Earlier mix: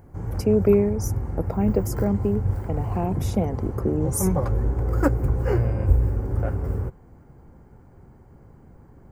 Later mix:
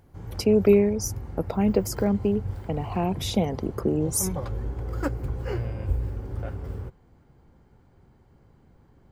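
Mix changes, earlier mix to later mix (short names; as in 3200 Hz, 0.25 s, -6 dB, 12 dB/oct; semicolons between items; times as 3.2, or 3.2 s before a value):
background -8.0 dB; master: add bell 3600 Hz +14.5 dB 1.1 oct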